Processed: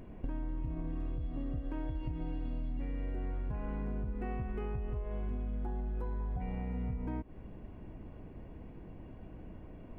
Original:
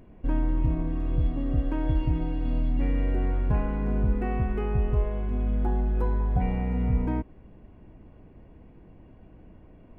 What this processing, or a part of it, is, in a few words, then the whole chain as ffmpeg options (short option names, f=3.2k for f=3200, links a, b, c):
serial compression, peaks first: -af "acompressor=threshold=-31dB:ratio=6,acompressor=threshold=-37dB:ratio=2.5,volume=2dB"